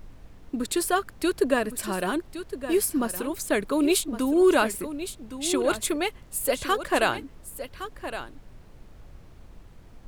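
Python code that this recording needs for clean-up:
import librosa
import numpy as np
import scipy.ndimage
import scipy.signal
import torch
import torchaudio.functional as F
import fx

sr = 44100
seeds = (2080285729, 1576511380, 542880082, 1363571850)

y = fx.noise_reduce(x, sr, print_start_s=9.43, print_end_s=9.93, reduce_db=23.0)
y = fx.fix_echo_inverse(y, sr, delay_ms=1114, level_db=-11.5)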